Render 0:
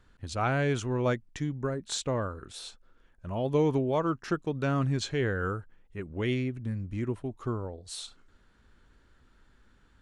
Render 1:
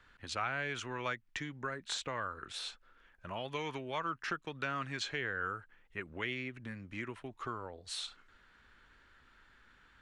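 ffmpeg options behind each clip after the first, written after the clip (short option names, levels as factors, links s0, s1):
-filter_complex "[0:a]equalizer=f=2000:w=0.43:g=14.5,acrossover=split=170|1100[s0][s1][s2];[s0]acompressor=threshold=0.00501:ratio=4[s3];[s1]acompressor=threshold=0.0178:ratio=4[s4];[s2]acompressor=threshold=0.0355:ratio=4[s5];[s3][s4][s5]amix=inputs=3:normalize=0,volume=0.422"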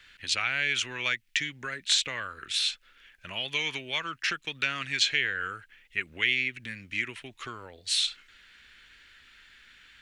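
-af "highshelf=f=1600:t=q:w=1.5:g=13"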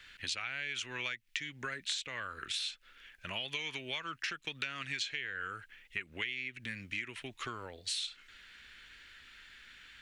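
-af "acompressor=threshold=0.0178:ratio=6"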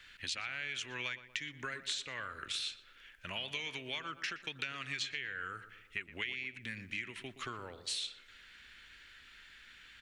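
-filter_complex "[0:a]asplit=2[s0][s1];[s1]adelay=120,lowpass=f=1700:p=1,volume=0.251,asplit=2[s2][s3];[s3]adelay=120,lowpass=f=1700:p=1,volume=0.54,asplit=2[s4][s5];[s5]adelay=120,lowpass=f=1700:p=1,volume=0.54,asplit=2[s6][s7];[s7]adelay=120,lowpass=f=1700:p=1,volume=0.54,asplit=2[s8][s9];[s9]adelay=120,lowpass=f=1700:p=1,volume=0.54,asplit=2[s10][s11];[s11]adelay=120,lowpass=f=1700:p=1,volume=0.54[s12];[s0][s2][s4][s6][s8][s10][s12]amix=inputs=7:normalize=0,volume=0.841"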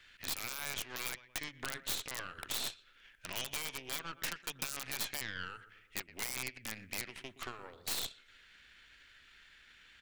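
-af "aeval=exprs='0.119*(cos(1*acos(clip(val(0)/0.119,-1,1)))-cos(1*PI/2))+0.015*(cos(6*acos(clip(val(0)/0.119,-1,1)))-cos(6*PI/2))+0.0119*(cos(7*acos(clip(val(0)/0.119,-1,1)))-cos(7*PI/2))':c=same,aeval=exprs='(mod(33.5*val(0)+1,2)-1)/33.5':c=same,volume=2.11"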